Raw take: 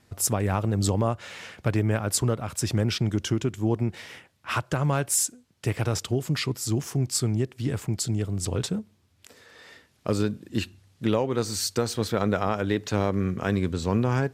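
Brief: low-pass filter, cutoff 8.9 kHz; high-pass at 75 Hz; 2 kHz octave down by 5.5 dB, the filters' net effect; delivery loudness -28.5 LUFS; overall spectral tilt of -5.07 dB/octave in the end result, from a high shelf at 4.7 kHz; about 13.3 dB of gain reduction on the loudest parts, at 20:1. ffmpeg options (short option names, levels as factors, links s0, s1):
-af "highpass=75,lowpass=8900,equalizer=f=2000:t=o:g=-6.5,highshelf=f=4700:g=-7,acompressor=threshold=0.0224:ratio=20,volume=3.55"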